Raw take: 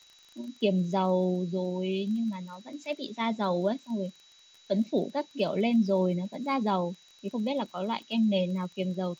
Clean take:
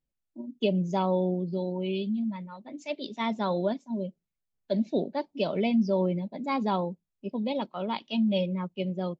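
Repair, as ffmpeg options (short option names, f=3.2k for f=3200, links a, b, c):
-af "adeclick=t=4,bandreject=f=3.9k:w=30,afftdn=nr=23:nf=-58"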